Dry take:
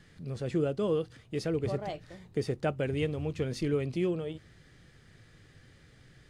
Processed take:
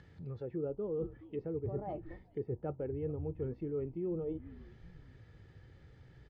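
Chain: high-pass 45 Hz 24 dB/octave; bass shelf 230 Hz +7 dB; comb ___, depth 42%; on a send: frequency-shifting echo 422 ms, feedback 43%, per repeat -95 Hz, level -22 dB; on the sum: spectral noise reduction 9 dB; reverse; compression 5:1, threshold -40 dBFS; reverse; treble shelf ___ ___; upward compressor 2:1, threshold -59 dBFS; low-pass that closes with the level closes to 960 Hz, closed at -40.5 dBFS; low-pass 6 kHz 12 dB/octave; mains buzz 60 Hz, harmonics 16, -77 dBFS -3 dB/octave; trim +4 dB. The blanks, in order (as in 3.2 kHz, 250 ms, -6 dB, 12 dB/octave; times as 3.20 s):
2.3 ms, 2.7 kHz, -8.5 dB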